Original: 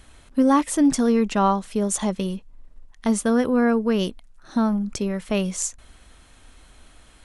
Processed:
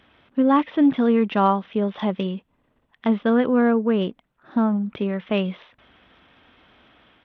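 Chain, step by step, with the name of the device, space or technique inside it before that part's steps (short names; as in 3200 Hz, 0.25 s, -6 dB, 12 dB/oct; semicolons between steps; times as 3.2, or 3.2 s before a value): 3.62–4.89 high shelf 2800 Hz -10.5 dB; Bluetooth headset (HPF 140 Hz 12 dB/oct; AGC gain up to 3 dB; downsampling 8000 Hz; gain -1.5 dB; SBC 64 kbps 32000 Hz)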